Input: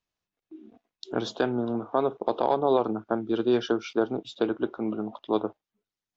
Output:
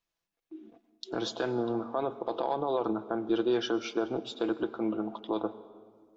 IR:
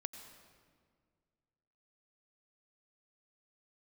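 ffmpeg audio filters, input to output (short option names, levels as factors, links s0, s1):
-filter_complex "[0:a]equalizer=f=130:t=o:w=2.3:g=-5,alimiter=limit=0.106:level=0:latency=1:release=51,asplit=2[s0][s1];[1:a]atrim=start_sample=2205,adelay=6[s2];[s1][s2]afir=irnorm=-1:irlink=0,volume=0.562[s3];[s0][s3]amix=inputs=2:normalize=0"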